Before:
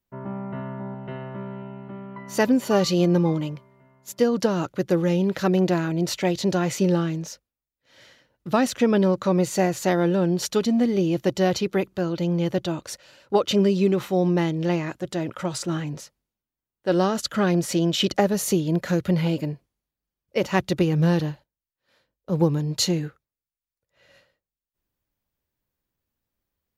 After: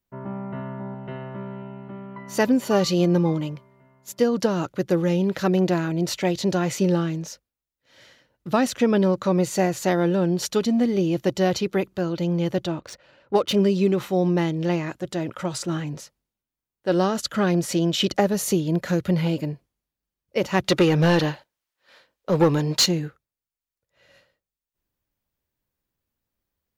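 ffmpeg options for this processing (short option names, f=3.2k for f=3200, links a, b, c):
-filter_complex "[0:a]asettb=1/sr,asplit=3[a][b][c];[a]atrim=end=12.674[d];[b]atrim=start=12.67:end=13.57,asetpts=PTS-STARTPTS,afade=t=in:d=0.004:c=qsin,afade=t=out:st=0.896:d=0.004:c=qsin,adynamicsmooth=sensitivity=6.5:basefreq=2.4k[e];[c]atrim=start=13.566[f];[d][e]acrossfade=d=0.004:c1=hsin:c2=qsin[g];[g][f]acrossfade=d=0.004:c1=qsin:c2=hsin,asettb=1/sr,asplit=3[h][i][j];[h]atrim=end=20.644[k];[i]atrim=start=20.64:end=22.86,asetpts=PTS-STARTPTS,afade=t=in:d=0.004:c=qsin,afade=t=out:st=2.216:d=0.004:c=qsin,asplit=2[l][m];[m]highpass=f=720:p=1,volume=19dB,asoftclip=type=tanh:threshold=-7dB[n];[l][n]amix=inputs=2:normalize=0,lowpass=f=4.6k:p=1,volume=-6dB[o];[j]atrim=start=22.856[p];[k][o]acrossfade=d=0.004:c1=hsin:c2=qsin[q];[q][p]acrossfade=d=0.004:c1=qsin:c2=hsin"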